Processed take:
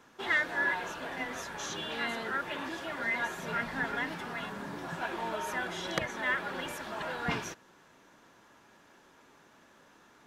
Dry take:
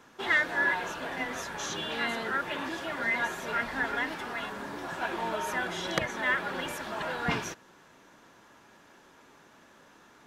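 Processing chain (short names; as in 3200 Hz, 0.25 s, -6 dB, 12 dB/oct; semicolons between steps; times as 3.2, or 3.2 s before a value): 3.38–5.02 bell 160 Hz +10.5 dB 0.63 oct; gain -3 dB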